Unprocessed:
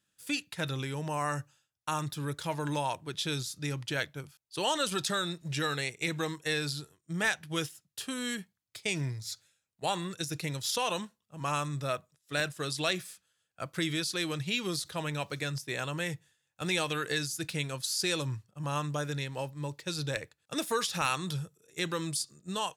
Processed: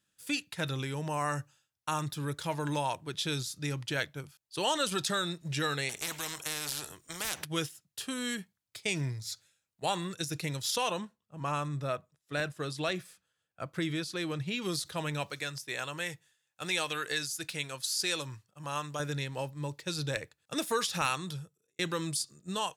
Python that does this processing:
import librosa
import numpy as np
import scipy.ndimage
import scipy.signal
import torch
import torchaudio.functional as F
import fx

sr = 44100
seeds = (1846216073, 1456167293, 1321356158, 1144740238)

y = fx.spectral_comp(x, sr, ratio=4.0, at=(5.89, 7.45))
y = fx.high_shelf(y, sr, hz=2700.0, db=-9.0, at=(10.9, 14.62))
y = fx.low_shelf(y, sr, hz=380.0, db=-10.0, at=(15.3, 19.0))
y = fx.edit(y, sr, fx.fade_out_span(start_s=21.02, length_s=0.77), tone=tone)